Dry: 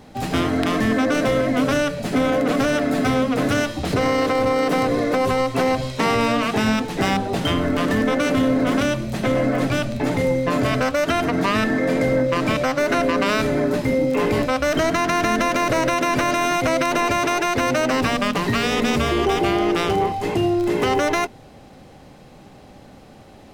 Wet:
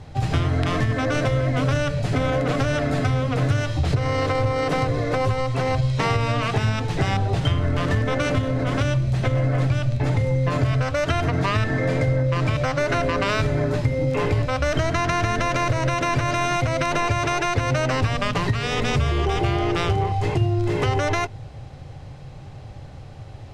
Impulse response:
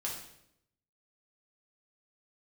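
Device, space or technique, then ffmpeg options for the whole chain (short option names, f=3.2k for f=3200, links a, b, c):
jukebox: -af "lowpass=7.8k,lowshelf=f=160:t=q:w=3:g=9.5,acompressor=threshold=-17dB:ratio=5,bandreject=f=60:t=h:w=6,bandreject=f=120:t=h:w=6"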